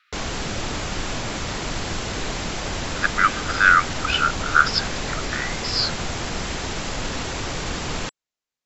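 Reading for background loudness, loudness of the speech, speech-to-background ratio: -28.0 LUFS, -20.5 LUFS, 7.5 dB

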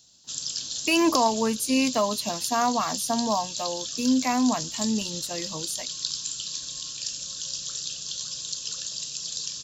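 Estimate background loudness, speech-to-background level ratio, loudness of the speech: -31.0 LUFS, 5.0 dB, -26.0 LUFS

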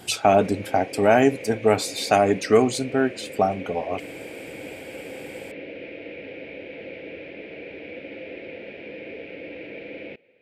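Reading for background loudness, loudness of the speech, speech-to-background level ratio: -37.5 LUFS, -21.5 LUFS, 16.0 dB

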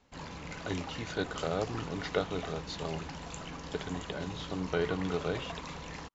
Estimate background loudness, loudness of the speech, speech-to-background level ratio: -43.0 LUFS, -36.5 LUFS, 6.5 dB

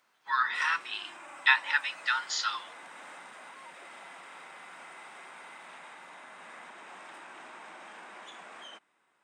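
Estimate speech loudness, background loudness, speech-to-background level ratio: -28.5 LUFS, -47.5 LUFS, 19.0 dB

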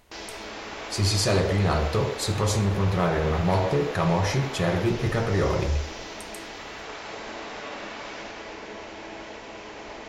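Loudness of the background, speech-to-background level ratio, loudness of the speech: -36.5 LUFS, 11.5 dB, -25.0 LUFS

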